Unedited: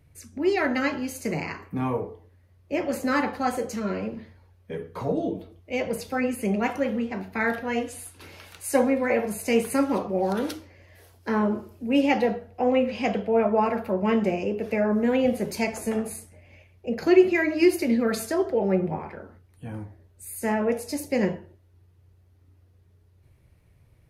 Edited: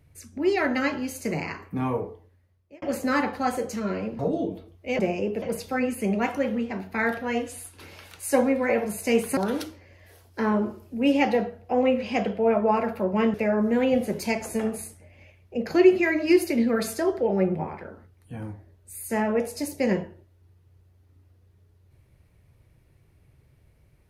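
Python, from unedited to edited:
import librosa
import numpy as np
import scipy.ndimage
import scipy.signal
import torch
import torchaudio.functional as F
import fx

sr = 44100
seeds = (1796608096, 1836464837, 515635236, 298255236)

y = fx.edit(x, sr, fx.fade_out_span(start_s=2.08, length_s=0.74),
    fx.cut(start_s=4.19, length_s=0.84),
    fx.cut(start_s=9.78, length_s=0.48),
    fx.move(start_s=14.23, length_s=0.43, to_s=5.83), tone=tone)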